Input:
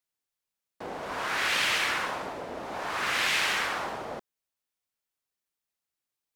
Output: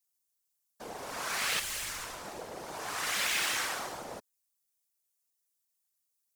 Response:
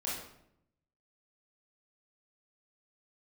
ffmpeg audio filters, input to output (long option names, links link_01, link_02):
-filter_complex "[0:a]asettb=1/sr,asplit=3[link_01][link_02][link_03];[link_01]atrim=end=1.594[link_04];[link_02]atrim=start=1.59:end=2.25,asetpts=PTS-STARTPTS,afade=type=in:duration=0.004:curve=qsin,afade=type=out:start_time=0.656:duration=0.004:curve=qsin,aeval=exprs='(tanh(50.1*val(0)+0.4)-tanh(0.4))/50.1':channel_layout=same[link_05];[link_03]atrim=start=2.246[link_06];[link_04][link_05]acrossfade=duration=0.004:curve1=hsin:curve2=qsin[link_07];[link_07][link_06]acrossfade=duration=0.004:curve1=qsin:curve2=hsin,acrossover=split=5600[link_08][link_09];[link_09]aeval=exprs='0.0422*sin(PI/2*3.55*val(0)/0.0422)':channel_layout=same[link_10];[link_08][link_10]amix=inputs=2:normalize=0,afftfilt=real='hypot(re,im)*cos(2*PI*random(0))':imag='hypot(re,im)*sin(2*PI*random(1))':win_size=512:overlap=0.75"